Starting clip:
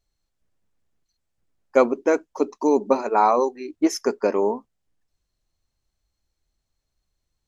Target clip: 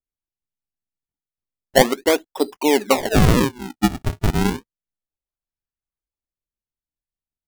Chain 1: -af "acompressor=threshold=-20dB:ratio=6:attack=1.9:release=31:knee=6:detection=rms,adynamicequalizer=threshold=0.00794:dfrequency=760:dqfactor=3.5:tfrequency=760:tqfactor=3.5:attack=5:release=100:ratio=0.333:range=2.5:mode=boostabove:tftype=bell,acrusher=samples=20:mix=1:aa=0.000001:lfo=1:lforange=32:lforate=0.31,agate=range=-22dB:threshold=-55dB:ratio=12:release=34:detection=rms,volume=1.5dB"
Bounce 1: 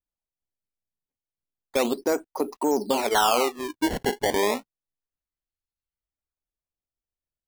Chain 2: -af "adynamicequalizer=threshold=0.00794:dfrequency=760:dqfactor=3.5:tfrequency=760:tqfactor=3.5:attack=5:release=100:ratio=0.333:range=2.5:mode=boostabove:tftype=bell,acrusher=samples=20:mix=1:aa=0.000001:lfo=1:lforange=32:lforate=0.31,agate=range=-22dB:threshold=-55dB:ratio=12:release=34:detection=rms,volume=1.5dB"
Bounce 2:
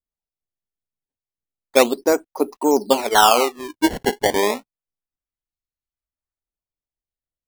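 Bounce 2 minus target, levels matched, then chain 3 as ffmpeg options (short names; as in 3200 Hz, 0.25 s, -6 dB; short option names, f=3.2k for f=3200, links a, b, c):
decimation with a swept rate: distortion -11 dB
-af "adynamicequalizer=threshold=0.00794:dfrequency=760:dqfactor=3.5:tfrequency=760:tqfactor=3.5:attack=5:release=100:ratio=0.333:range=2.5:mode=boostabove:tftype=bell,acrusher=samples=48:mix=1:aa=0.000001:lfo=1:lforange=76.8:lforate=0.31,agate=range=-22dB:threshold=-55dB:ratio=12:release=34:detection=rms,volume=1.5dB"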